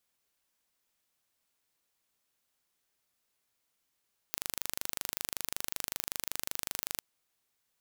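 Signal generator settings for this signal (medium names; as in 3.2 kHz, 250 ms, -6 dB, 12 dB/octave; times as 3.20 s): pulse train 25.3 per s, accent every 0, -6.5 dBFS 2.65 s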